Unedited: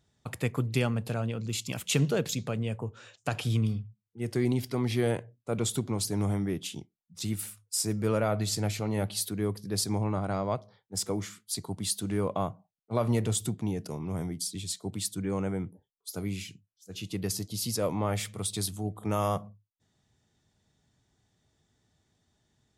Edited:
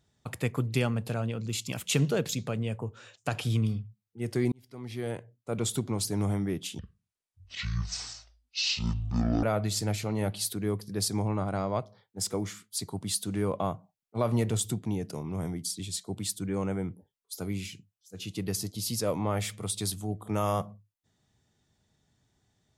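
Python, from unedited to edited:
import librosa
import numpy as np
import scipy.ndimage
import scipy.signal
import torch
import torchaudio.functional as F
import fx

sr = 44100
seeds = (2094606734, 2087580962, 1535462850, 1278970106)

y = fx.edit(x, sr, fx.fade_in_span(start_s=4.52, length_s=1.2),
    fx.speed_span(start_s=6.79, length_s=1.4, speed=0.53), tone=tone)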